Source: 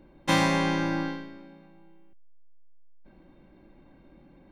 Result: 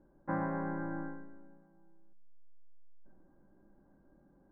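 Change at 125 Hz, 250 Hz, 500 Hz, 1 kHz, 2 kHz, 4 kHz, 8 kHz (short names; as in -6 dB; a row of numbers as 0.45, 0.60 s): -11.0 dB, -10.5 dB, -10.5 dB, -11.0 dB, -15.5 dB, under -40 dB, under -35 dB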